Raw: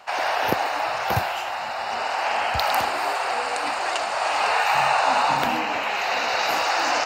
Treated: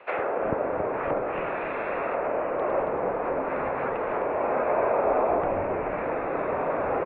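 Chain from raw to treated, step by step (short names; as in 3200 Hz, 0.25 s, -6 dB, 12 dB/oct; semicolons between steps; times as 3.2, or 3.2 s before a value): low shelf 220 Hz -5.5 dB; mistuned SSB -220 Hz 230–3000 Hz; low shelf 490 Hz -5 dB; frequency-shifting echo 0.275 s, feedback 39%, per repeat -130 Hz, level -7.5 dB; treble ducked by the level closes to 930 Hz, closed at -22 dBFS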